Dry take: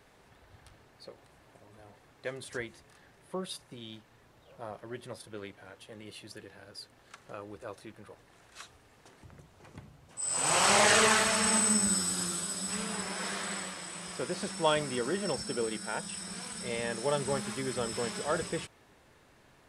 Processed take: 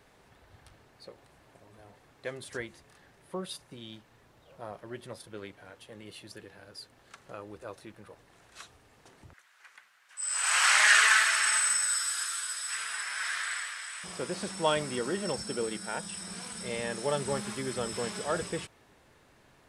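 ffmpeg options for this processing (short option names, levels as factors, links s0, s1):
-filter_complex "[0:a]asettb=1/sr,asplit=3[s0][s1][s2];[s0]atrim=end=9.334[s3];[s1]atrim=start=9.33:end=14.04,asetpts=PTS-STARTPTS,afade=t=in:d=0.004:c=qsin,afade=t=out:st=4.706:d=0.004:c=qsin,highpass=f=1600:t=q:w=2.5[s4];[s2]atrim=start=14.036[s5];[s3][s4]acrossfade=d=0.004:c1=hsin:c2=qsin[s6];[s6][s5]acrossfade=d=0.004:c1=qsin:c2=hsin"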